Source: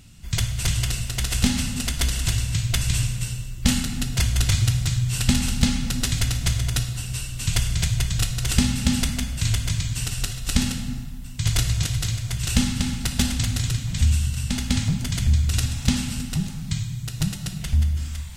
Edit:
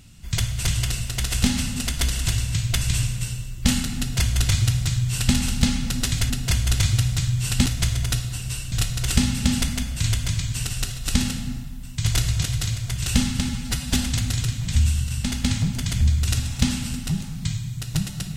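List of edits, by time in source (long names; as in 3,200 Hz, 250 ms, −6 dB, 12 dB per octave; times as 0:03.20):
0:03.99–0:05.35: duplicate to 0:06.30
0:07.36–0:08.13: remove
0:12.90–0:13.20: time-stretch 1.5×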